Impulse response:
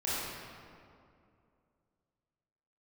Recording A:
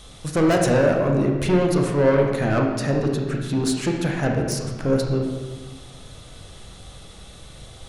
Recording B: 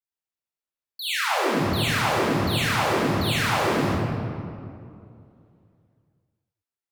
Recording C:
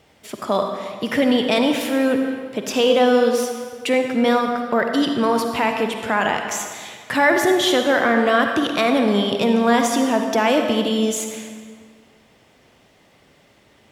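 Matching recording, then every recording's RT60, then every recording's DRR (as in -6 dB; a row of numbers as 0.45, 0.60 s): B; 1.4, 2.4, 1.8 s; 1.0, -10.0, 4.0 dB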